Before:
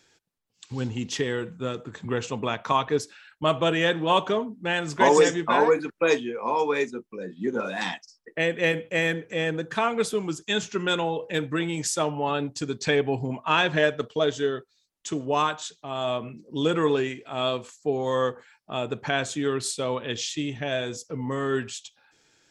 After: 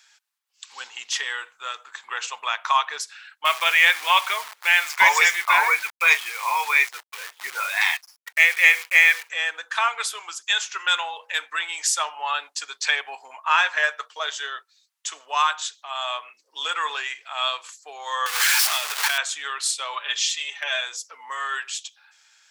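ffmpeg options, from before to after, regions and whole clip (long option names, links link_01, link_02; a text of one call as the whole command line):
ffmpeg -i in.wav -filter_complex "[0:a]asettb=1/sr,asplit=3[link_01][link_02][link_03];[link_01]atrim=end=3.454[link_04];[link_02]atrim=start=3.45:end=9.29,asetpts=PTS-STARTPTS,afade=type=in:duration=0.004:curve=qsin,afade=type=out:start_time=5.836:duration=0.004:curve=qsin,lowpass=7200,equalizer=frequency=2200:width=4.8:gain=15,acrusher=bits=7:dc=4:mix=0:aa=0.000001[link_05];[link_03]atrim=start=9.286[link_06];[link_04][link_05]acrossfade=duration=0.004:curve1=hsin:curve2=qsin[link_07];[link_07][link_06]acrossfade=duration=0.004:curve1=qsin:curve2=hsin,asettb=1/sr,asplit=3[link_08][link_09][link_10];[link_08]atrim=end=13.074[link_11];[link_09]atrim=start=13.07:end=14.25,asetpts=PTS-STARTPTS,afade=type=in:duration=0.004:curve=qsin,afade=type=out:start_time=1.176:duration=0.004:curve=qsin,equalizer=frequency=3300:width_type=o:width=0.71:gain=-6.5,asplit=2[link_12][link_13];[link_13]adelay=15,volume=-14dB[link_14];[link_12][link_14]amix=inputs=2:normalize=0,atrim=end_sample=52038[link_15];[link_10]atrim=start=14.246[link_16];[link_11][link_15]acrossfade=duration=0.004:curve1=hsin:curve2=qsin[link_17];[link_17][link_16]acrossfade=duration=0.004:curve1=qsin:curve2=hsin,asettb=1/sr,asplit=3[link_18][link_19][link_20];[link_18]atrim=end=18.264[link_21];[link_19]atrim=start=18.26:end=19.18,asetpts=PTS-STARTPTS,afade=type=in:duration=0.004:curve=qsin,afade=type=out:start_time=0.916:duration=0.004:curve=qsin,aeval=exprs='val(0)+0.5*0.0668*sgn(val(0))':channel_layout=same,acompressor=threshold=-26dB:ratio=6:attack=3.2:release=140:knee=1:detection=peak,highshelf=frequency=2100:gain=8[link_22];[link_20]atrim=start=19.176[link_23];[link_21][link_22]acrossfade=duration=0.004:curve1=hsin:curve2=qsin[link_24];[link_24][link_23]acrossfade=duration=0.004:curve1=qsin:curve2=hsin,asettb=1/sr,asplit=3[link_25][link_26][link_27];[link_25]atrim=end=19.934[link_28];[link_26]atrim=start=19.93:end=20.81,asetpts=PTS-STARTPTS,afade=type=in:duration=0.004:curve=qsin,afade=type=out:start_time=0.876:duration=0.004:curve=qsin,aecho=1:1:5:0.74,atrim=end_sample=38808,asoftclip=type=hard:threshold=-14.5dB[link_29];[link_27]atrim=start=20.806[link_30];[link_28][link_29]acrossfade=duration=0.004:curve1=hsin:curve2=qsin[link_31];[link_31][link_30]acrossfade=duration=0.004:curve1=qsin:curve2=hsin,highpass=frequency=980:width=0.5412,highpass=frequency=980:width=1.3066,acontrast=64" out.wav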